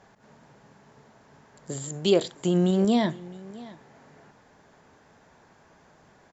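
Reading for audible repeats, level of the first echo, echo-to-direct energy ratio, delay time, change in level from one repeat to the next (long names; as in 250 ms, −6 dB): 1, −20.0 dB, −20.0 dB, 661 ms, repeats not evenly spaced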